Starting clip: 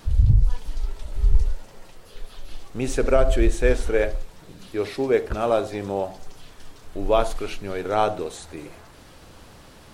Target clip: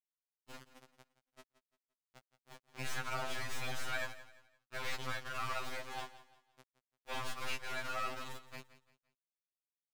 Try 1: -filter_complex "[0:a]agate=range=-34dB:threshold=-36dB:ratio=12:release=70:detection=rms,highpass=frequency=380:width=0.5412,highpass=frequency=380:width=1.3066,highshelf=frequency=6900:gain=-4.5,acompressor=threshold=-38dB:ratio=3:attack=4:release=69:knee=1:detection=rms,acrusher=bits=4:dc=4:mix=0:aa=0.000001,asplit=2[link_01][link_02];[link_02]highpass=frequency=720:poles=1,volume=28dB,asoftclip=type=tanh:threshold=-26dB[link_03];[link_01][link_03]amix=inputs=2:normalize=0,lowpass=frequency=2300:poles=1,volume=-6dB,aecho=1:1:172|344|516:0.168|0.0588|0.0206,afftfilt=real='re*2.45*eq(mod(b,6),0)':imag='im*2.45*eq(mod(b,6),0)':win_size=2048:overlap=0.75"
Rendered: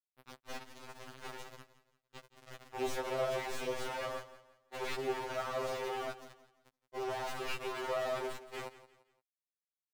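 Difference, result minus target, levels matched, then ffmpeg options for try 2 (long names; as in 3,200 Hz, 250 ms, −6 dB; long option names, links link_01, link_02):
500 Hz band +9.5 dB
-filter_complex "[0:a]agate=range=-34dB:threshold=-36dB:ratio=12:release=70:detection=rms,highpass=frequency=1200:width=0.5412,highpass=frequency=1200:width=1.3066,highshelf=frequency=6900:gain=-4.5,acompressor=threshold=-38dB:ratio=3:attack=4:release=69:knee=1:detection=rms,acrusher=bits=4:dc=4:mix=0:aa=0.000001,asplit=2[link_01][link_02];[link_02]highpass=frequency=720:poles=1,volume=28dB,asoftclip=type=tanh:threshold=-26dB[link_03];[link_01][link_03]amix=inputs=2:normalize=0,lowpass=frequency=2300:poles=1,volume=-6dB,aecho=1:1:172|344|516:0.168|0.0588|0.0206,afftfilt=real='re*2.45*eq(mod(b,6),0)':imag='im*2.45*eq(mod(b,6),0)':win_size=2048:overlap=0.75"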